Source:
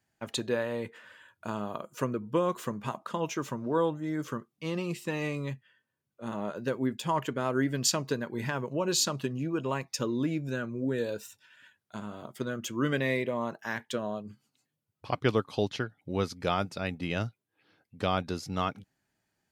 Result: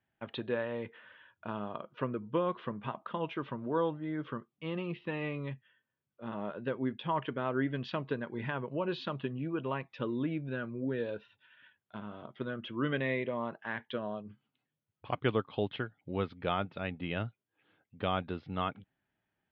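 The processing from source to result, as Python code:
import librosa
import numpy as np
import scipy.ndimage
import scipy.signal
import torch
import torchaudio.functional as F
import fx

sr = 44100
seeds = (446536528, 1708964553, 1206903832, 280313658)

y = scipy.signal.sosfilt(scipy.signal.ellip(4, 1.0, 60, 3400.0, 'lowpass', fs=sr, output='sos'), x)
y = y * 10.0 ** (-3.0 / 20.0)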